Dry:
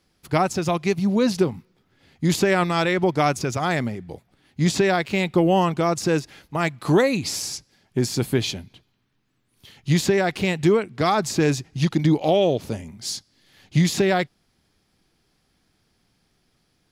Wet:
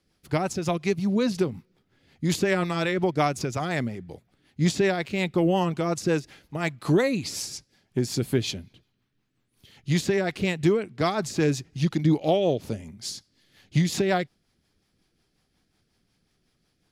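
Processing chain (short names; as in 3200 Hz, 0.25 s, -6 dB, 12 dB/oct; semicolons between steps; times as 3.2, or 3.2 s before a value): rotary speaker horn 5.5 Hz; gain -2 dB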